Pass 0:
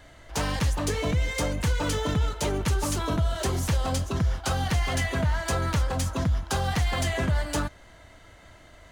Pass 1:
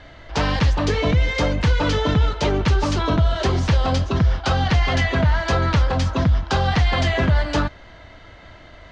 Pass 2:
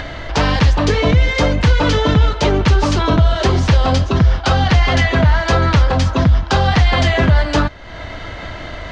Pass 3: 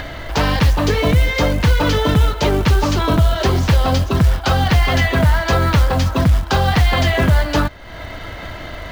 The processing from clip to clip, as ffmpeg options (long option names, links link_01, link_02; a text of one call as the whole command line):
ffmpeg -i in.wav -af "lowpass=frequency=5000:width=0.5412,lowpass=frequency=5000:width=1.3066,volume=7.5dB" out.wav
ffmpeg -i in.wav -af "acompressor=mode=upward:threshold=-23dB:ratio=2.5,volume=5.5dB" out.wav
ffmpeg -i in.wav -af "acrusher=bits=6:mode=log:mix=0:aa=0.000001,volume=-1.5dB" out.wav